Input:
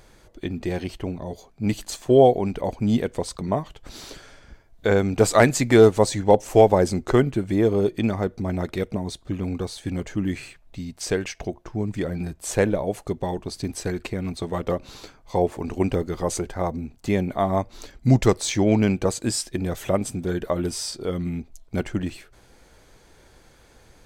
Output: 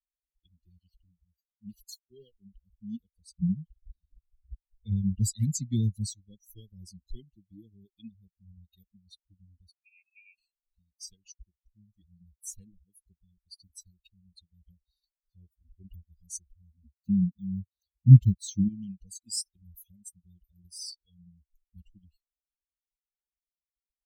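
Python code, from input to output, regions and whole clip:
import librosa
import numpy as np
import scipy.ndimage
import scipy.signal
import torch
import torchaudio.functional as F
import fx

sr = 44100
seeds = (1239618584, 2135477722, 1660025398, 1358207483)

y = fx.chain(x, sr, fx.notch_comb(f0_hz=310.0),
    fx.backlash(play_db=-19.0),
    fx.band_widen(depth_pct=40), at=(1.99, 2.39))
y = fx.chain(y, sr, fx.env_lowpass(base_hz=1100.0, full_db=-13.0),
    fx.peak_eq(hz=140.0, db=9.0, octaves=1.8),
    fx.band_squash(depth_pct=40), at=(3.37, 6.1))
y = fx.chain(y, sr, fx.low_shelf(hz=140.0, db=-5.5),
    fx.freq_invert(carrier_hz=2600), at=(9.71, 10.38))
y = fx.chain(y, sr, fx.law_mismatch(coded='mu'),
    fx.highpass(hz=130.0, slope=12),
    fx.bass_treble(bass_db=12, treble_db=-5), at=(16.84, 18.68))
y = fx.bin_expand(y, sr, power=3.0)
y = scipy.signal.sosfilt(scipy.signal.cheby2(4, 80, [650.0, 1400.0], 'bandstop', fs=sr, output='sos'), y)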